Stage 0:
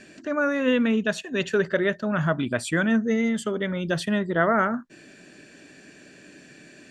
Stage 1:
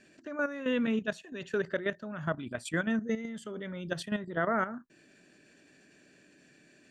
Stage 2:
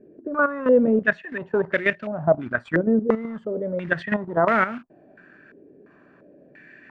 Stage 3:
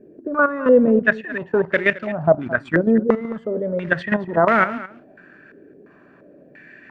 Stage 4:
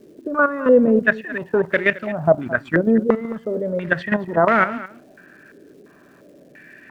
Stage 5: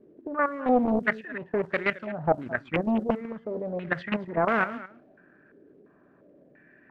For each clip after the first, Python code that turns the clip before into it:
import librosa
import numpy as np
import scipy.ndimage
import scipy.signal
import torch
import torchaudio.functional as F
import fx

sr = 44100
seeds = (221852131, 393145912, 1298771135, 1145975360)

y1 = fx.level_steps(x, sr, step_db=11)
y1 = y1 * 10.0 ** (-6.0 / 20.0)
y2 = fx.quant_float(y1, sr, bits=2)
y2 = fx.filter_held_lowpass(y2, sr, hz=2.9, low_hz=440.0, high_hz=2400.0)
y2 = y2 * 10.0 ** (7.5 / 20.0)
y3 = y2 + 10.0 ** (-17.0 / 20.0) * np.pad(y2, (int(218 * sr / 1000.0), 0))[:len(y2)]
y3 = y3 * 10.0 ** (3.5 / 20.0)
y4 = fx.dmg_crackle(y3, sr, seeds[0], per_s=590.0, level_db=-50.0)
y5 = fx.env_lowpass(y4, sr, base_hz=1300.0, full_db=-13.0)
y5 = fx.doppler_dist(y5, sr, depth_ms=0.64)
y5 = y5 * 10.0 ** (-8.5 / 20.0)